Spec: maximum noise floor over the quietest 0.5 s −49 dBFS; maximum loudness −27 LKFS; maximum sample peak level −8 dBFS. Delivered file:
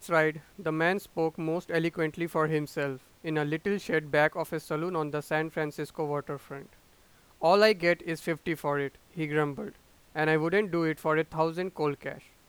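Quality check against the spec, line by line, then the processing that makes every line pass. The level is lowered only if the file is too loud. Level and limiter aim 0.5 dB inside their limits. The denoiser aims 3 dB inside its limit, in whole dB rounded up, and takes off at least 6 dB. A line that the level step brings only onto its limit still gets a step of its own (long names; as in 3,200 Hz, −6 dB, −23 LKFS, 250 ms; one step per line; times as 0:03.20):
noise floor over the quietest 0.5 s −60 dBFS: in spec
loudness −29.5 LKFS: in spec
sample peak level −9.0 dBFS: in spec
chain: no processing needed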